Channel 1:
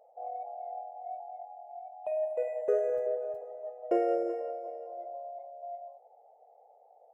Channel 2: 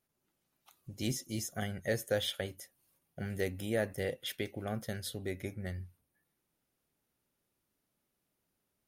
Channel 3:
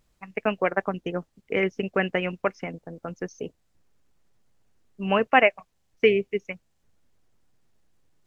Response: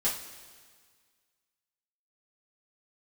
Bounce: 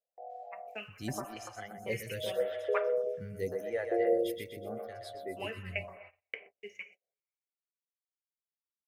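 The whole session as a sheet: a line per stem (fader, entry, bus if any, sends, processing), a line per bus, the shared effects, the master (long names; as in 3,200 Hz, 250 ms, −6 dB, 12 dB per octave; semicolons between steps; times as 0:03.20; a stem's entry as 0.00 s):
+2.0 dB, 0.00 s, no send, no echo send, inverse Chebyshev low-pass filter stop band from 2,700 Hz, stop band 70 dB
−1.5 dB, 0.00 s, no send, echo send −6.5 dB, spectral dynamics exaggerated over time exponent 1.5; hollow resonant body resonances 480/2,000 Hz, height 10 dB
−6.0 dB, 0.30 s, send −11 dB, echo send −19.5 dB, high-pass filter 840 Hz 12 dB per octave; gate pattern "xxx.xx.." 154 BPM −24 dB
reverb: on, pre-delay 3 ms
echo: repeating echo 124 ms, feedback 52%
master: noise gate −50 dBFS, range −34 dB; phaser with staggered stages 0.85 Hz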